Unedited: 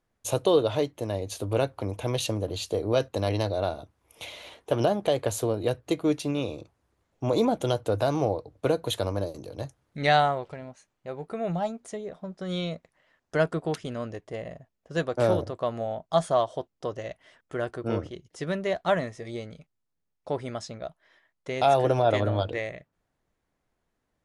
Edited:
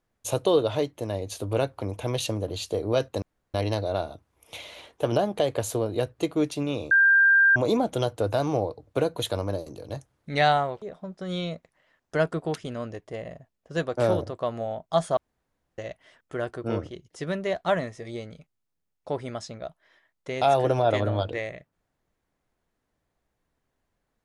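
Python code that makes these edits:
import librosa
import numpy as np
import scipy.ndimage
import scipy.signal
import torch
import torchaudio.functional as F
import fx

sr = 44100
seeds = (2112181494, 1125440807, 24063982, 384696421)

y = fx.edit(x, sr, fx.insert_room_tone(at_s=3.22, length_s=0.32),
    fx.bleep(start_s=6.59, length_s=0.65, hz=1590.0, db=-14.5),
    fx.cut(start_s=10.5, length_s=1.52),
    fx.room_tone_fill(start_s=16.37, length_s=0.61), tone=tone)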